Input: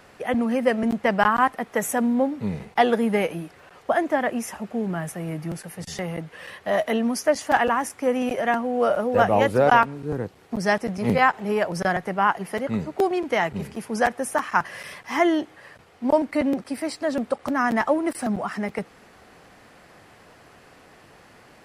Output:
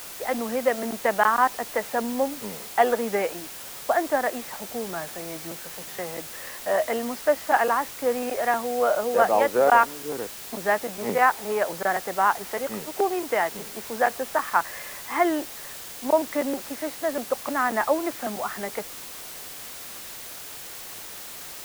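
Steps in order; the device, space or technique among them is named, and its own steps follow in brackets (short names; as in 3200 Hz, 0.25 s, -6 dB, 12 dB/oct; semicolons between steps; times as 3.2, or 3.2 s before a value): wax cylinder (BPF 380–2100 Hz; wow and flutter; white noise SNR 13 dB)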